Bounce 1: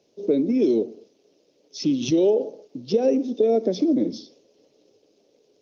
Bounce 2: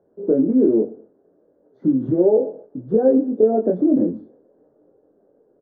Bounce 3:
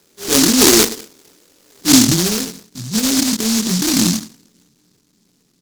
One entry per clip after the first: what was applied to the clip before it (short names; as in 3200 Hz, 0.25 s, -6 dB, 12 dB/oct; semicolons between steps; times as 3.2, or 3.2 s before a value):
elliptic low-pass 1600 Hz, stop band 40 dB; low shelf 110 Hz +6.5 dB; doubler 23 ms -3 dB; gain +2 dB
low-pass sweep 1200 Hz -> 190 Hz, 1.51–2.17; transient shaper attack -12 dB, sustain +4 dB; noise-modulated delay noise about 5400 Hz, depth 0.42 ms; gain +5.5 dB